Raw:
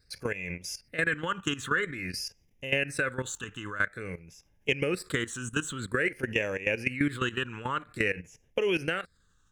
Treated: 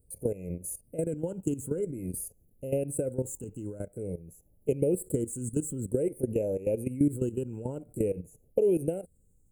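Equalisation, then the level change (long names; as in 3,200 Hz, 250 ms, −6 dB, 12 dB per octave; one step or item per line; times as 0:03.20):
inverse Chebyshev band-stop filter 1,100–5,600 Hz, stop band 40 dB
parametric band 2,800 Hz +10.5 dB 2.1 octaves
high-shelf EQ 8,200 Hz +7 dB
+3.0 dB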